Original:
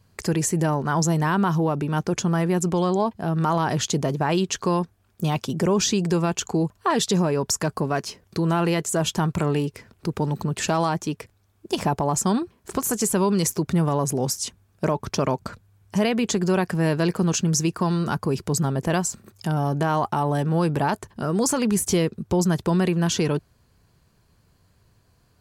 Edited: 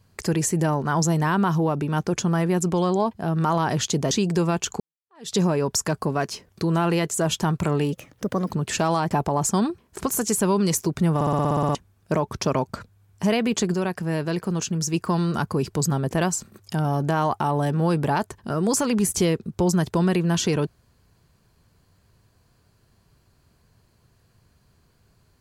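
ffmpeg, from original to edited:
-filter_complex "[0:a]asplit=18[s0][s1][s2][s3][s4][s5][s6][s7][s8][s9][s10][s11][s12][s13][s14][s15][s16][s17];[s0]atrim=end=4.112[s18];[s1]atrim=start=5.858:end=6.55,asetpts=PTS-STARTPTS,afade=t=out:st=0.688:d=0.004:c=hsin[s19];[s2]atrim=start=6.55:end=9.684,asetpts=PTS-STARTPTS,afade=t=in:d=0.53:c=exp[s20];[s3]atrim=start=9.68:end=10.39,asetpts=PTS-STARTPTS,asetrate=55125,aresample=44100[s21];[s4]atrim=start=10.386:end=11.002[s22];[s5]atrim=start=11.828:end=13.932[s23];[s6]atrim=start=13.868:end=13.932[s24];[s7]atrim=start=13.868:end=13.932[s25];[s8]atrim=start=13.868:end=13.932[s26];[s9]atrim=start=13.868:end=13.932[s27];[s10]atrim=start=13.868:end=13.932[s28];[s11]atrim=start=13.868:end=13.932[s29];[s12]atrim=start=13.868:end=13.932[s30];[s13]atrim=start=13.868:end=13.932[s31];[s14]atrim=start=13.868:end=13.932[s32];[s15]atrim=start=14.468:end=16.462[s33];[s16]atrim=start=16.458:end=17.662,asetpts=PTS-STARTPTS,volume=0.631[s34];[s17]atrim=start=17.658[s35];[s19][s20]concat=n=2:v=0:a=1[s36];[s18][s36]acrossfade=d=0.004:c1=hsin:c2=hsin[s37];[s37][s21]acrossfade=d=0.004:c1=hsin:c2=hsin[s38];[s38][s22]acrossfade=d=0.004:c1=hsin:c2=hsin[s39];[s39][s23]acrossfade=d=0.004:c1=hsin:c2=hsin[s40];[s40][s24]acrossfade=d=0.004:c1=hsin:c2=hsin[s41];[s41][s25]acrossfade=d=0.004:c1=hsin:c2=hsin[s42];[s42][s26]acrossfade=d=0.004:c1=hsin:c2=hsin[s43];[s43][s27]acrossfade=d=0.004:c1=hsin:c2=hsin[s44];[s44][s28]acrossfade=d=0.004:c1=hsin:c2=hsin[s45];[s45][s29]acrossfade=d=0.004:c1=hsin:c2=hsin[s46];[s46][s30]acrossfade=d=0.004:c1=hsin:c2=hsin[s47];[s47][s31]acrossfade=d=0.004:c1=hsin:c2=hsin[s48];[s48][s32]acrossfade=d=0.004:c1=hsin:c2=hsin[s49];[s49][s33]acrossfade=d=0.004:c1=hsin:c2=hsin[s50];[s50][s34]acrossfade=d=0.004:c1=hsin:c2=hsin[s51];[s51][s35]acrossfade=d=0.004:c1=hsin:c2=hsin"

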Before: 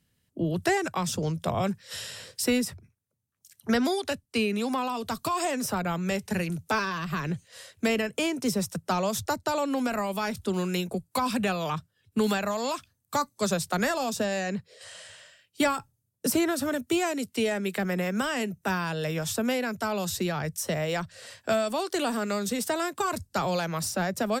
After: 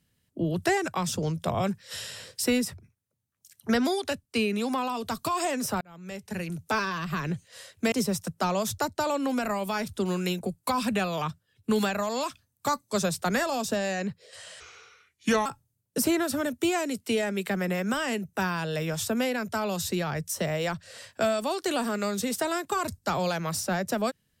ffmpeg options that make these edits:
-filter_complex "[0:a]asplit=5[s0][s1][s2][s3][s4];[s0]atrim=end=5.81,asetpts=PTS-STARTPTS,afade=t=out:st=5.806:d=0.004:c=hsin[s5];[s1]atrim=start=5.81:end=7.922,asetpts=PTS-STARTPTS,afade=t=in:d=0.99[s6];[s2]atrim=start=8.398:end=15.084[s7];[s3]atrim=start=15.08:end=15.74,asetpts=PTS-STARTPTS,asetrate=33957,aresample=44100[s8];[s4]atrim=start=15.736[s9];[s5][s6]concat=n=2:v=0:a=1[s10];[s10][s7]acrossfade=d=0.004:c1=hsin:c2=hsin[s11];[s11][s8]acrossfade=d=0.004:c1=hsin:c2=hsin[s12];[s12][s9]acrossfade=d=0.004:c1=hsin:c2=hsin"

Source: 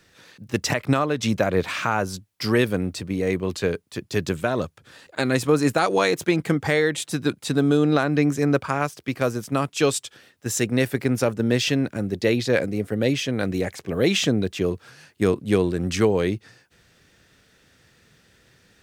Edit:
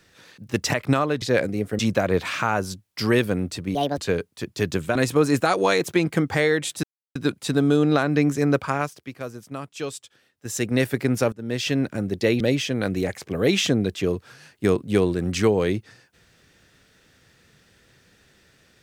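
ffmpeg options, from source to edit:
-filter_complex "[0:a]asplit=11[s0][s1][s2][s3][s4][s5][s6][s7][s8][s9][s10];[s0]atrim=end=1.222[s11];[s1]atrim=start=12.408:end=12.982[s12];[s2]atrim=start=1.218:end=3.184[s13];[s3]atrim=start=3.18:end=3.52,asetpts=PTS-STARTPTS,asetrate=67032,aresample=44100,atrim=end_sample=9864,asetpts=PTS-STARTPTS[s14];[s4]atrim=start=3.516:end=4.502[s15];[s5]atrim=start=5.278:end=7.16,asetpts=PTS-STARTPTS,afade=t=out:st=1.878:d=0.004:c=hsin,apad=pad_dur=0.32[s16];[s6]atrim=start=7.16:end=9.12,asetpts=PTS-STARTPTS,afade=t=in:d=0.004:c=hsin,afade=t=out:st=1.58:d=0.38:silence=0.298538[s17];[s7]atrim=start=9.12:end=10.37,asetpts=PTS-STARTPTS,volume=0.299[s18];[s8]atrim=start=10.37:end=11.33,asetpts=PTS-STARTPTS,afade=t=in:d=0.38:silence=0.298538,afade=t=out:st=0.956:d=0.004:c=hsin:silence=0.0891251[s19];[s9]atrim=start=11.33:end=12.412,asetpts=PTS-STARTPTS,afade=t=in:d=0.48:silence=0.0891251[s20];[s10]atrim=start=12.978[s21];[s11][s12]acrossfade=d=0.004:c1=hsin:c2=hsin[s22];[s22][s13]acrossfade=d=0.004:c1=hsin:c2=hsin[s23];[s23][s14]acrossfade=d=0.004:c1=hsin:c2=hsin[s24];[s24][s15]acrossfade=d=0.004:c1=hsin:c2=hsin[s25];[s16][s17][s18][s19][s20]concat=n=5:v=0:a=1[s26];[s25][s26]acrossfade=d=0.004:c1=hsin:c2=hsin[s27];[s27][s21]acrossfade=d=0.004:c1=hsin:c2=hsin"

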